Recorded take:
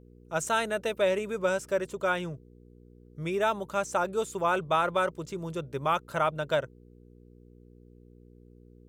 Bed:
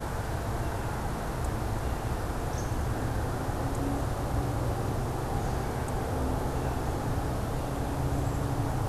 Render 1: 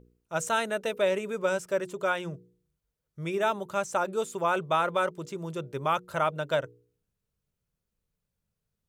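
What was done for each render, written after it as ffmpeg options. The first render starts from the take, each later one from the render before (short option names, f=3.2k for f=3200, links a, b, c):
-af "bandreject=f=60:t=h:w=4,bandreject=f=120:t=h:w=4,bandreject=f=180:t=h:w=4,bandreject=f=240:t=h:w=4,bandreject=f=300:t=h:w=4,bandreject=f=360:t=h:w=4,bandreject=f=420:t=h:w=4,bandreject=f=480:t=h:w=4"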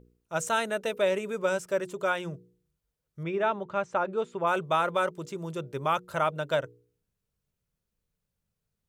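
-filter_complex "[0:a]asettb=1/sr,asplit=3[a][b][c];[a]atrim=end=3.234[d];[b]atrim=start=3.23:end=4.47,asetpts=PTS-STARTPTS,afade=t=in:d=0.004:c=qsin,afade=t=out:st=1.236:d=0.004:c=qsin,lowpass=2.7k[e];[c]atrim=start=4.466[f];[d][e]acrossfade=d=0.004:c1=hsin:c2=qsin[g];[g][f]acrossfade=d=0.004:c1=qsin:c2=hsin"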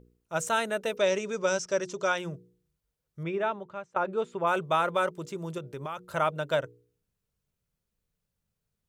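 -filter_complex "[0:a]asettb=1/sr,asplit=3[a][b][c];[a]atrim=end=0.974[d];[b]atrim=start=0.97:end=2.18,asetpts=PTS-STARTPTS,afade=t=in:d=0.004:c=qsin,afade=t=out:st=1.206:d=0.004:c=qsin,lowpass=f=5.8k:t=q:w=5[e];[c]atrim=start=2.176[f];[d][e]acrossfade=d=0.004:c1=hsin:c2=qsin[g];[g][f]acrossfade=d=0.004:c1=qsin:c2=hsin,asettb=1/sr,asplit=3[h][i][j];[h]atrim=end=5.584[k];[i]atrim=start=5.58:end=6,asetpts=PTS-STARTPTS,afade=t=in:d=0.004:c=qsin,afade=t=out:st=0.416:d=0.004:c=qsin,acompressor=threshold=-35dB:ratio=3:attack=3.2:release=140:knee=1:detection=peak[l];[j]atrim=start=5.996[m];[k][l]acrossfade=d=0.004:c1=hsin:c2=qsin[n];[n][m]acrossfade=d=0.004:c1=qsin:c2=hsin,asplit=2[o][p];[o]atrim=end=3.96,asetpts=PTS-STARTPTS,afade=t=out:st=3.27:d=0.69:silence=0.105925[q];[p]atrim=start=3.96,asetpts=PTS-STARTPTS,afade=t=in:d=0.004:c=hsin:silence=0.105925[r];[q][r]concat=n=2:v=0:a=1"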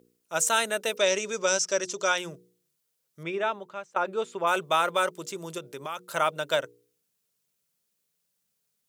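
-af "highpass=220,highshelf=f=2.8k:g=12"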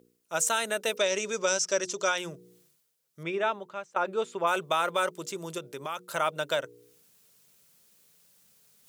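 -af "alimiter=limit=-15dB:level=0:latency=1:release=124,areverse,acompressor=mode=upward:threshold=-48dB:ratio=2.5,areverse"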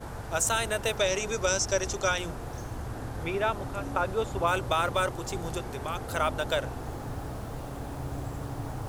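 -filter_complex "[1:a]volume=-6dB[a];[0:a][a]amix=inputs=2:normalize=0"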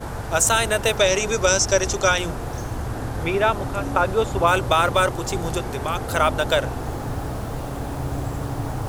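-af "volume=8.5dB"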